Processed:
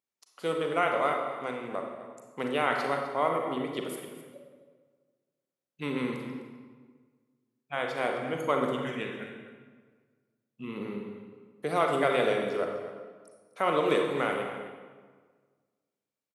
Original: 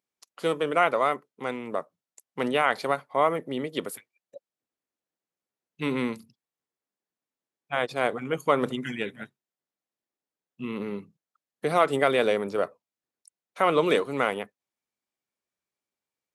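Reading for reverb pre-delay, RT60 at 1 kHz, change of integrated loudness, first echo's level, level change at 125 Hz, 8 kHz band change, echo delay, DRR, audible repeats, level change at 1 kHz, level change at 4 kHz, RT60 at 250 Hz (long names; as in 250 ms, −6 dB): 34 ms, 1.5 s, −3.5 dB, −13.5 dB, −2.5 dB, −4.0 dB, 256 ms, 1.5 dB, 1, −3.0 dB, −3.5 dB, 1.7 s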